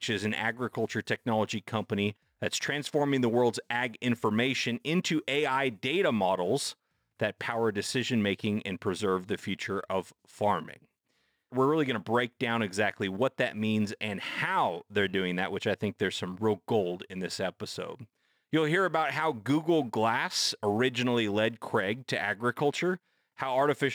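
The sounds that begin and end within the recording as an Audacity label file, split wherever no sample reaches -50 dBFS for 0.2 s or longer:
2.420000	6.730000	sound
7.200000	10.850000	sound
11.520000	18.050000	sound
18.530000	22.970000	sound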